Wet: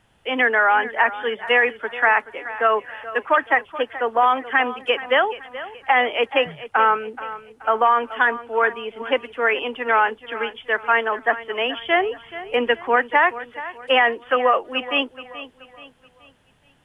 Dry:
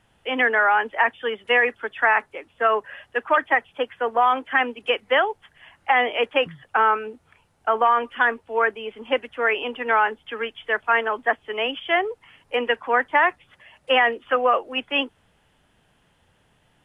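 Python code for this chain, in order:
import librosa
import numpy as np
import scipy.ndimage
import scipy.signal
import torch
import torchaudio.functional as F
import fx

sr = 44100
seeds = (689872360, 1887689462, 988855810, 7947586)

p1 = fx.low_shelf(x, sr, hz=280.0, db=7.0, at=(11.77, 12.96))
p2 = p1 + fx.echo_feedback(p1, sr, ms=428, feedback_pct=40, wet_db=-15.0, dry=0)
y = p2 * 10.0 ** (1.5 / 20.0)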